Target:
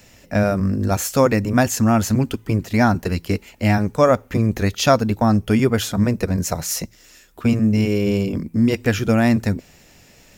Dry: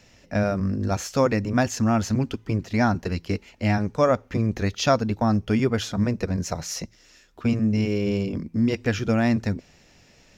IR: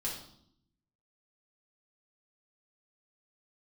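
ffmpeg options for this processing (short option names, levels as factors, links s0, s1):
-af "aexciter=amount=5.3:drive=2.8:freq=7900,volume=1.78"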